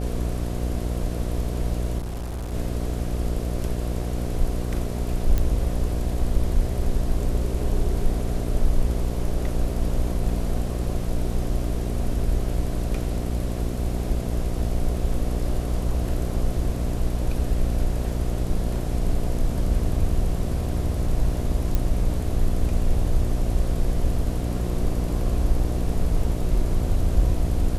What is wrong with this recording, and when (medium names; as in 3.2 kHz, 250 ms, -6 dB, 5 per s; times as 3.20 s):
buzz 60 Hz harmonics 12 -27 dBFS
1.98–2.54 s: clipped -27 dBFS
5.38 s: pop -11 dBFS
21.75 s: pop -11 dBFS